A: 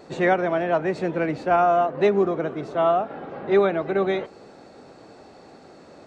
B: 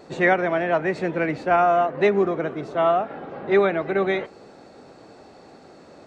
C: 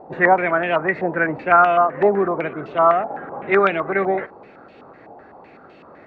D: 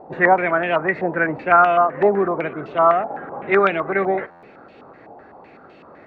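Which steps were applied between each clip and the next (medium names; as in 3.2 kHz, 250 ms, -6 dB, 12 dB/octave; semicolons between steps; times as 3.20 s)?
dynamic bell 2 kHz, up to +6 dB, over -42 dBFS, Q 1.8
step-sequenced low-pass 7.9 Hz 820–2800 Hz
buffer glitch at 4.30 s, samples 512, times 10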